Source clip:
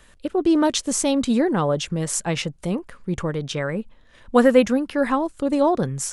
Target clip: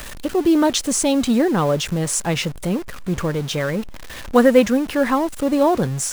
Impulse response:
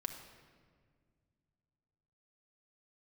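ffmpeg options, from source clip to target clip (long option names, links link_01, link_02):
-af "aeval=exprs='val(0)+0.5*0.0316*sgn(val(0))':channel_layout=same,acrusher=bits=7:mode=log:mix=0:aa=0.000001,volume=1.5dB"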